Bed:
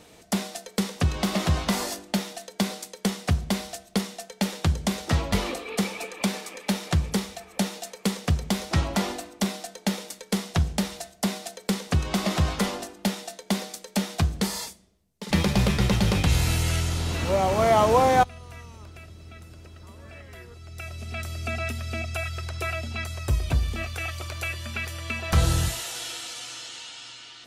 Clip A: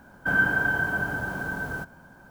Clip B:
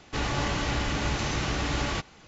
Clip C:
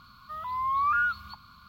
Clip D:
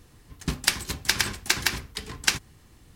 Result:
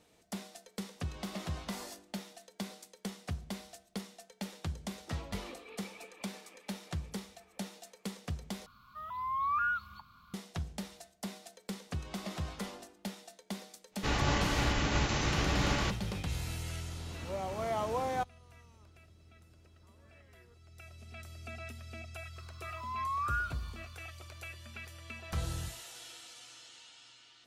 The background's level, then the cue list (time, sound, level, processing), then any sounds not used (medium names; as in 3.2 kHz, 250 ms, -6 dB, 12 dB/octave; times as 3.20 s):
bed -15 dB
8.66 s: replace with C -6 dB + peaking EQ 4.4 kHz -7 dB 0.25 oct
13.90 s: add B -1 dB, fades 0.10 s + upward expansion, over -37 dBFS
22.36 s: add C -7.5 dB + spectral blur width 88 ms
not used: A, D